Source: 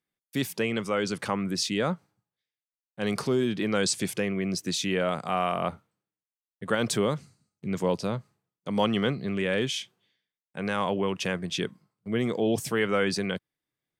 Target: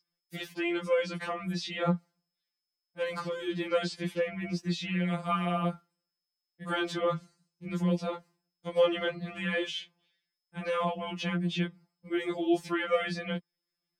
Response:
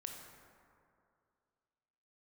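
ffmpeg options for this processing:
-filter_complex "[0:a]acrossover=split=550|4200[link_01][link_02][link_03];[link_03]acompressor=threshold=-52dB:ratio=12[link_04];[link_01][link_02][link_04]amix=inputs=3:normalize=0,adynamicequalizer=threshold=0.00251:dfrequency=110:dqfactor=6:tfrequency=110:tqfactor=6:attack=5:release=100:ratio=0.375:range=2.5:mode=cutabove:tftype=bell,aeval=exprs='val(0)+0.00158*sin(2*PI*5100*n/s)':channel_layout=same,afftfilt=real='re*2.83*eq(mod(b,8),0)':imag='im*2.83*eq(mod(b,8),0)':win_size=2048:overlap=0.75"

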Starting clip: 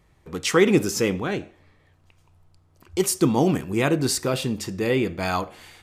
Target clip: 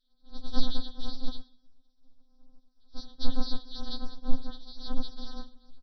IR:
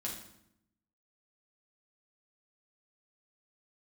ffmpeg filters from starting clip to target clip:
-filter_complex "[0:a]aresample=11025,acrusher=samples=42:mix=1:aa=0.000001,aresample=44100,asuperstop=centerf=2400:order=8:qfactor=1.3,equalizer=frequency=250:width_type=o:width=0.64:gain=5.5,aecho=1:1:3.6:0.6,asplit=2[link_01][link_02];[1:a]atrim=start_sample=2205,adelay=82[link_03];[link_02][link_03]afir=irnorm=-1:irlink=0,volume=-23dB[link_04];[link_01][link_04]amix=inputs=2:normalize=0,afftfilt=real='re*3.46*eq(mod(b,12),0)':imag='im*3.46*eq(mod(b,12),0)':win_size=2048:overlap=0.75"

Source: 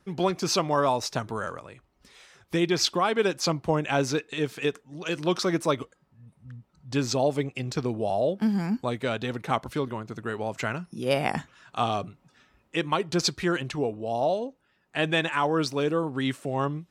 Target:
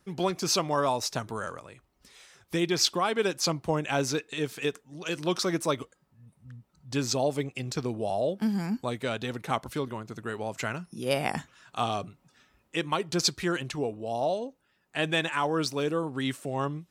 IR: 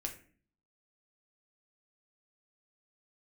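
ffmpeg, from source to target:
-af "highshelf=frequency=5800:gain=8.5,volume=-3dB"

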